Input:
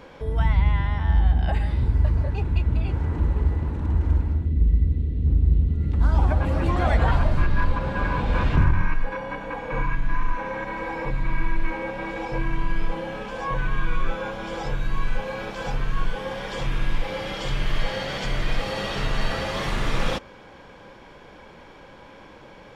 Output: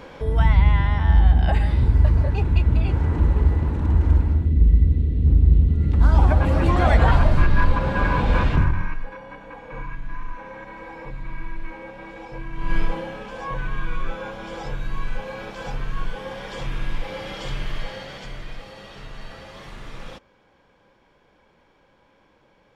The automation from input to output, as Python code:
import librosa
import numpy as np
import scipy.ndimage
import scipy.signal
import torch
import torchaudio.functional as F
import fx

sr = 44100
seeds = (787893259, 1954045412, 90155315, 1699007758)

y = fx.gain(x, sr, db=fx.line((8.32, 4.0), (9.17, -8.0), (12.53, -8.0), (12.75, 4.5), (13.17, -2.5), (17.52, -2.5), (18.76, -13.5)))